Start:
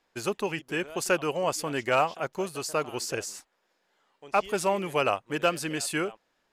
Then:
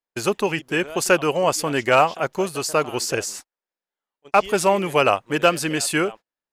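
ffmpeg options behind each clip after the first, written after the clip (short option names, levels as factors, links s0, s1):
-af "agate=range=0.0355:threshold=0.00631:ratio=16:detection=peak,volume=2.51"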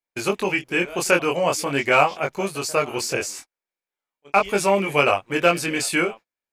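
-af "equalizer=f=2300:w=7.8:g=9.5,flanger=delay=20:depth=3.5:speed=0.43,volume=1.19"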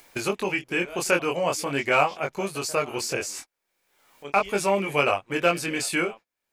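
-af "acompressor=mode=upward:threshold=0.0891:ratio=2.5,volume=0.631"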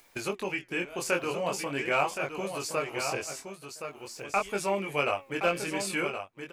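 -filter_complex "[0:a]asplit=2[s0][s1];[s1]aecho=0:1:1070:0.422[s2];[s0][s2]amix=inputs=2:normalize=0,flanger=delay=0.8:depth=7:regen=88:speed=0.46:shape=sinusoidal,volume=0.841"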